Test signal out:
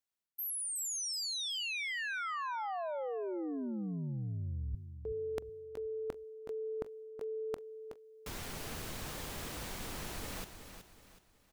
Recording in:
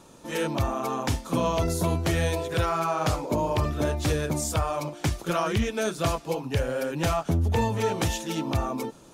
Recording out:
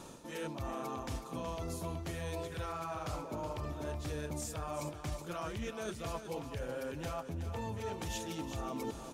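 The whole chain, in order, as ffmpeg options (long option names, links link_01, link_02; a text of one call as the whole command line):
ffmpeg -i in.wav -af "areverse,acompressor=threshold=-39dB:ratio=12,areverse,aecho=1:1:372|744|1116|1488:0.335|0.124|0.0459|0.017,volume=2dB" out.wav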